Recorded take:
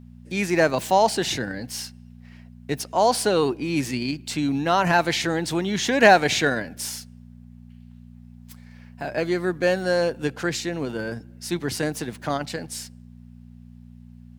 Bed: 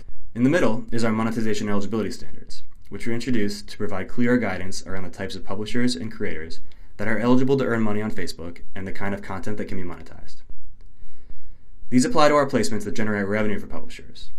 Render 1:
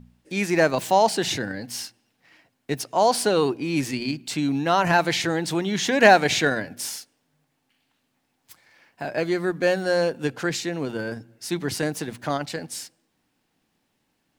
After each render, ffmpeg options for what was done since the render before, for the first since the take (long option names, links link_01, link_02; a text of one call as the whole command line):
ffmpeg -i in.wav -af "bandreject=frequency=60:width_type=h:width=4,bandreject=frequency=120:width_type=h:width=4,bandreject=frequency=180:width_type=h:width=4,bandreject=frequency=240:width_type=h:width=4" out.wav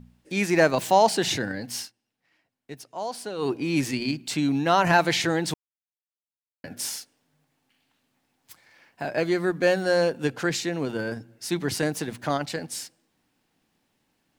ffmpeg -i in.wav -filter_complex "[0:a]asplit=5[link_01][link_02][link_03][link_04][link_05];[link_01]atrim=end=1.92,asetpts=PTS-STARTPTS,afade=type=out:start_time=1.78:duration=0.14:silence=0.223872[link_06];[link_02]atrim=start=1.92:end=3.38,asetpts=PTS-STARTPTS,volume=-13dB[link_07];[link_03]atrim=start=3.38:end=5.54,asetpts=PTS-STARTPTS,afade=type=in:duration=0.14:silence=0.223872,afade=type=out:start_time=2.156:duration=0.004:curve=hsin[link_08];[link_04]atrim=start=5.54:end=6.64,asetpts=PTS-STARTPTS,volume=0[link_09];[link_05]atrim=start=6.64,asetpts=PTS-STARTPTS,afade=type=in:duration=0.004:curve=hsin[link_10];[link_06][link_07][link_08][link_09][link_10]concat=n=5:v=0:a=1" out.wav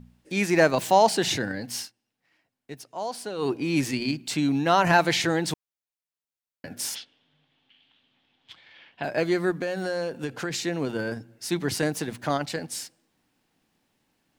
ffmpeg -i in.wav -filter_complex "[0:a]asplit=3[link_01][link_02][link_03];[link_01]afade=type=out:start_time=6.94:duration=0.02[link_04];[link_02]lowpass=frequency=3300:width_type=q:width=5.4,afade=type=in:start_time=6.94:duration=0.02,afade=type=out:start_time=9.02:duration=0.02[link_05];[link_03]afade=type=in:start_time=9.02:duration=0.02[link_06];[link_04][link_05][link_06]amix=inputs=3:normalize=0,asettb=1/sr,asplit=3[link_07][link_08][link_09];[link_07]atrim=end=9.524[link_10];[link_08]atrim=start=9.52:end=10.61,asetpts=PTS-STARTPTS,afade=type=in:duration=0.004:curve=qsin,afade=type=out:start_time=1.086:duration=0.004:curve=qsin,acompressor=threshold=-25dB:ratio=6:attack=3.2:release=140:knee=1:detection=peak[link_11];[link_09]atrim=start=10.606[link_12];[link_10][link_11]acrossfade=duration=0.004:curve1=hsin:curve2=qsin[link_13];[link_13][link_12]acrossfade=duration=0.004:curve1=qsin:curve2=hsin" out.wav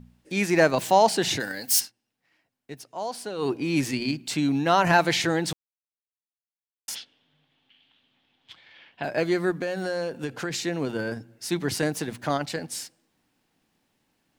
ffmpeg -i in.wav -filter_complex "[0:a]asplit=3[link_01][link_02][link_03];[link_01]afade=type=out:start_time=1.39:duration=0.02[link_04];[link_02]aemphasis=mode=production:type=riaa,afade=type=in:start_time=1.39:duration=0.02,afade=type=out:start_time=1.79:duration=0.02[link_05];[link_03]afade=type=in:start_time=1.79:duration=0.02[link_06];[link_04][link_05][link_06]amix=inputs=3:normalize=0,asplit=3[link_07][link_08][link_09];[link_07]atrim=end=5.53,asetpts=PTS-STARTPTS,afade=type=out:start_time=5.526:duration=0.004:curve=hsin[link_10];[link_08]atrim=start=5.53:end=6.88,asetpts=PTS-STARTPTS,volume=0[link_11];[link_09]atrim=start=6.88,asetpts=PTS-STARTPTS,afade=type=in:duration=0.004:curve=hsin[link_12];[link_10][link_11][link_12]concat=n=3:v=0:a=1" out.wav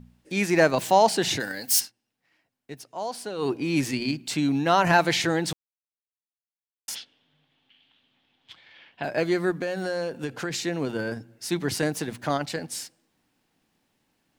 ffmpeg -i in.wav -af anull out.wav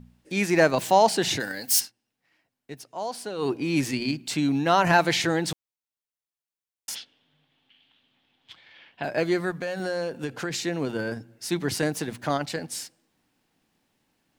ffmpeg -i in.wav -filter_complex "[0:a]asettb=1/sr,asplit=3[link_01][link_02][link_03];[link_01]atrim=end=9.404[link_04];[link_02]atrim=start=9.4:end=9.8,asetpts=PTS-STARTPTS,afade=type=in:duration=0.004:curve=qsin,afade=type=out:start_time=0.396:duration=0.004:curve=qsin,equalizer=frequency=310:width=2.4:gain=-9.5[link_05];[link_03]atrim=start=9.796[link_06];[link_04][link_05]acrossfade=duration=0.004:curve1=hsin:curve2=qsin[link_07];[link_07][link_06]acrossfade=duration=0.004:curve1=qsin:curve2=hsin" out.wav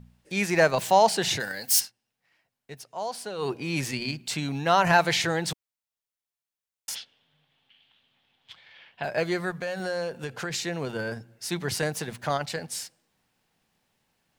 ffmpeg -i in.wav -af "equalizer=frequency=290:width=2.5:gain=-10" out.wav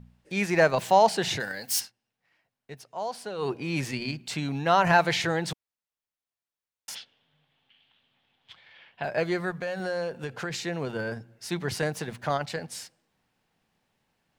ffmpeg -i in.wav -af "highshelf=frequency=4600:gain=-7.5" out.wav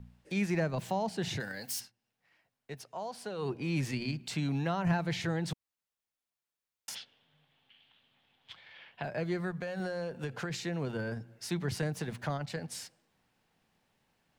ffmpeg -i in.wav -filter_complex "[0:a]acrossover=split=270[link_01][link_02];[link_02]acompressor=threshold=-40dB:ratio=2.5[link_03];[link_01][link_03]amix=inputs=2:normalize=0" out.wav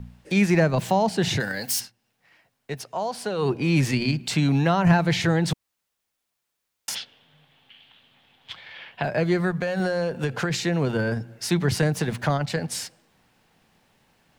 ffmpeg -i in.wav -af "volume=11.5dB" out.wav